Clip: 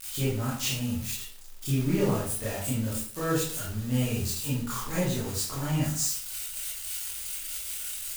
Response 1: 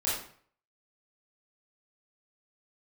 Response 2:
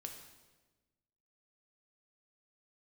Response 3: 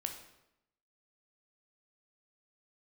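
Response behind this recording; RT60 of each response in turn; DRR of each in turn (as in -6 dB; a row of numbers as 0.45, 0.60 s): 1; 0.50, 1.3, 0.85 s; -8.5, 3.0, 4.0 dB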